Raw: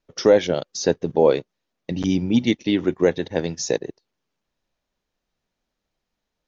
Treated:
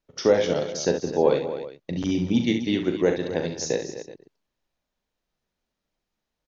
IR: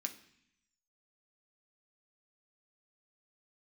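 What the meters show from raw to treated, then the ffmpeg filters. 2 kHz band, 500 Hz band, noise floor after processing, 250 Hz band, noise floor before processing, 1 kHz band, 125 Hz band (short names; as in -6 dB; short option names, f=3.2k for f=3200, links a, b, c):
-2.5 dB, -3.0 dB, -83 dBFS, -3.0 dB, -81 dBFS, -2.5 dB, -2.5 dB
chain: -af "aecho=1:1:40|67|162|197|258|376:0.376|0.398|0.119|0.133|0.266|0.133,volume=-4dB"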